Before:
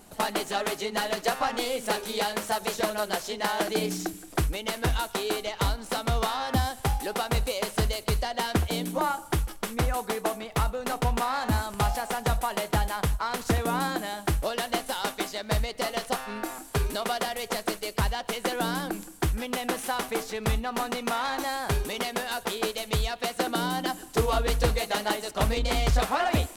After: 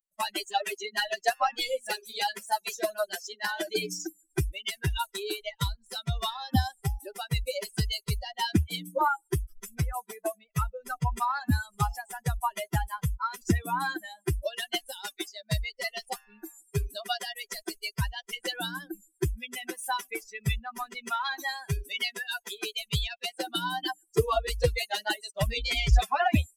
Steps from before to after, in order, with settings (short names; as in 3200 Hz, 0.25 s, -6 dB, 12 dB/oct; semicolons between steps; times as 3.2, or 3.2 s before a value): per-bin expansion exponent 3; dynamic EQ 2900 Hz, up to +5 dB, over -52 dBFS, Q 0.71; gain +6 dB